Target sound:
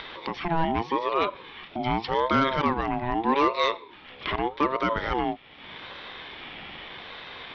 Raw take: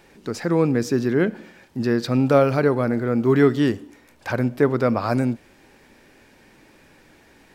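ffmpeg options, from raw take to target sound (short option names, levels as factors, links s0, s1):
-af "lowpass=f=2900:t=q:w=8,acompressor=mode=upward:threshold=0.0794:ratio=2.5,aresample=11025,asoftclip=type=hard:threshold=0.335,aresample=44100,aeval=exprs='val(0)*sin(2*PI*650*n/s+650*0.25/0.83*sin(2*PI*0.83*n/s))':c=same,volume=0.708"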